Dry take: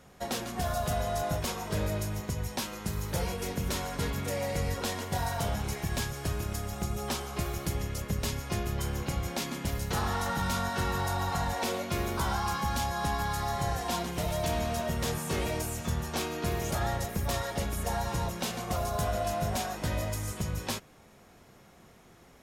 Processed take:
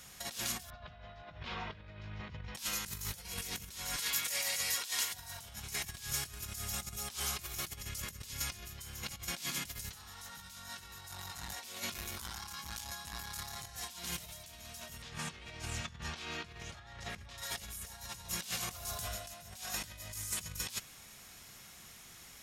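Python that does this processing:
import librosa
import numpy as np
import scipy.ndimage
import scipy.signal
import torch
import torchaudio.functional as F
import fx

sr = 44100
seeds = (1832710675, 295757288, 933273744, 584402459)

y = fx.bessel_lowpass(x, sr, hz=2200.0, order=6, at=(0.7, 2.55))
y = fx.highpass(y, sr, hz=1100.0, slope=6, at=(3.96, 5.14))
y = fx.transformer_sat(y, sr, knee_hz=340.0, at=(11.11, 13.67))
y = fx.lowpass(y, sr, hz=3300.0, slope=12, at=(15.02, 17.38))
y = fx.edit(y, sr, fx.fade_out_to(start_s=18.62, length_s=0.65, floor_db=-14.5), tone=tone)
y = fx.high_shelf(y, sr, hz=2300.0, db=7.5)
y = fx.over_compress(y, sr, threshold_db=-36.0, ratio=-0.5)
y = fx.tone_stack(y, sr, knobs='5-5-5')
y = y * librosa.db_to_amplitude(6.0)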